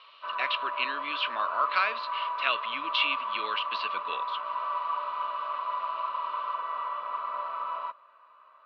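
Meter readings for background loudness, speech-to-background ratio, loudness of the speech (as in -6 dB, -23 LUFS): -33.0 LUFS, 2.5 dB, -30.5 LUFS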